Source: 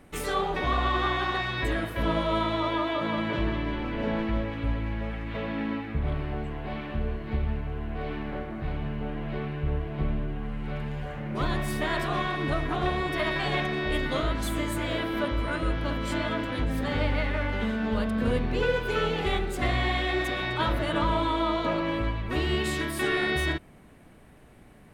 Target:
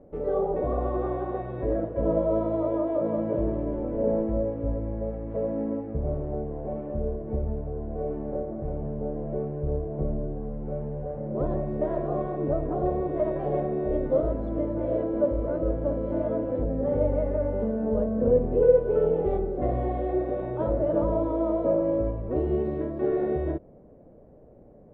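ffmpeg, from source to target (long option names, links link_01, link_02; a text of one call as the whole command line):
ffmpeg -i in.wav -af "lowpass=frequency=540:width_type=q:width=3.9,volume=-1.5dB" out.wav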